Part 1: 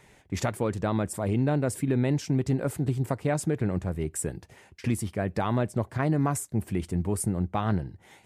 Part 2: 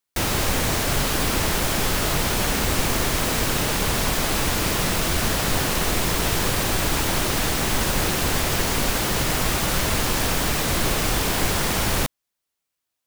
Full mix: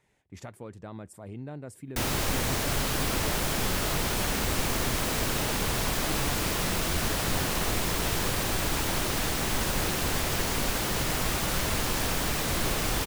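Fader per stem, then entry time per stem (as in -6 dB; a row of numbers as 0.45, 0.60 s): -14.5, -6.0 dB; 0.00, 1.80 s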